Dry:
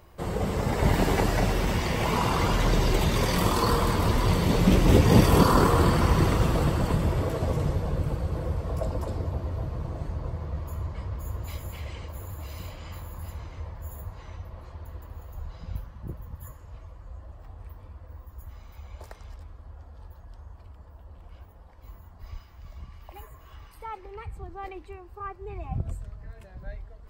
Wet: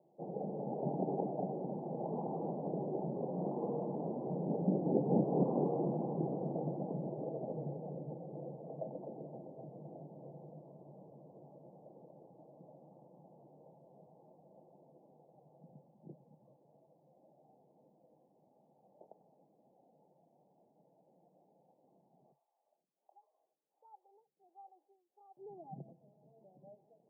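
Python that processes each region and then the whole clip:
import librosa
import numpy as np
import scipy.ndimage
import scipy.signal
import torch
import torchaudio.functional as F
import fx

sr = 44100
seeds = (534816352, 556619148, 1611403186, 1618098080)

y = fx.chain(x, sr, fx.cvsd(bps=64000),
    fx.highpass(hz=1000.0, slope=12),
    fx.stagger_phaser(hz=1.4), at=(22.32, 25.37))
y = scipy.signal.sosfilt(scipy.signal.cheby1(5, 1.0, [140.0, 820.0], 'bandpass', fs=sr, output='sos'), y)
y = fx.low_shelf(y, sr, hz=200.0, db=-6.0)
y = y * 10.0 ** (-8.0 / 20.0)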